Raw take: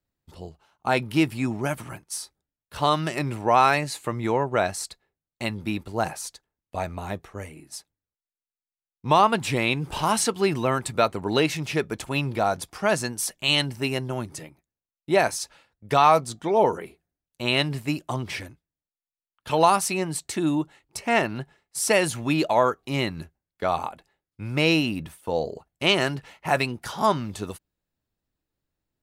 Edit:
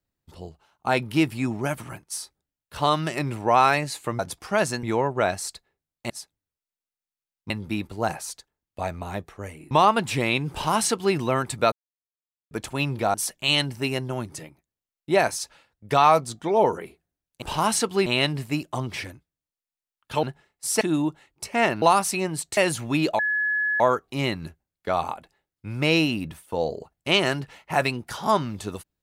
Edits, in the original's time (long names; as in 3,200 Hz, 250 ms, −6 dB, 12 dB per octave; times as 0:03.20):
0:07.67–0:09.07: move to 0:05.46
0:09.87–0:10.51: duplicate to 0:17.42
0:11.08–0:11.87: silence
0:12.50–0:13.14: move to 0:04.19
0:19.59–0:20.34: swap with 0:21.35–0:21.93
0:22.55: insert tone 1,700 Hz −21 dBFS 0.61 s